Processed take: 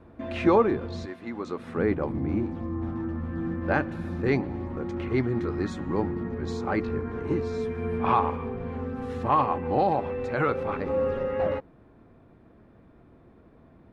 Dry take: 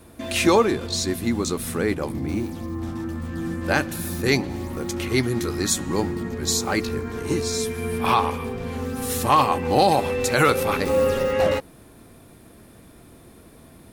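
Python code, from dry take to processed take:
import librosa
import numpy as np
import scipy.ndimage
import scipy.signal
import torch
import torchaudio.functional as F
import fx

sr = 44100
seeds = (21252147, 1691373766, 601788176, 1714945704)

y = fx.highpass(x, sr, hz=fx.line((1.05, 1200.0), (1.76, 290.0)), slope=6, at=(1.05, 1.76), fade=0.02)
y = fx.rider(y, sr, range_db=3, speed_s=2.0)
y = scipy.signal.sosfilt(scipy.signal.butter(2, 1600.0, 'lowpass', fs=sr, output='sos'), y)
y = y * librosa.db_to_amplitude(-4.0)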